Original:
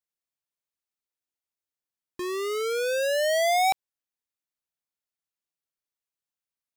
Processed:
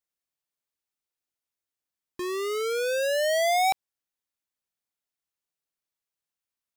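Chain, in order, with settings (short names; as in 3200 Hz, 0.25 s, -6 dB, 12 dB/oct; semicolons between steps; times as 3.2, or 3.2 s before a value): in parallel at -11.5 dB: soft clip -36.5 dBFS, distortion -10 dB; on the sum: gain -1 dB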